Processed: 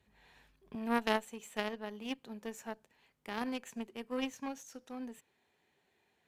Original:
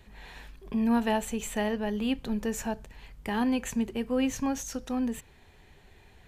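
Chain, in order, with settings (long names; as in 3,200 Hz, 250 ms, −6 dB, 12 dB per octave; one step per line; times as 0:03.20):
high-pass filter 72 Hz 12 dB per octave, from 0:00.75 220 Hz
harmonic generator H 3 −11 dB, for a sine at −15 dBFS
level +1 dB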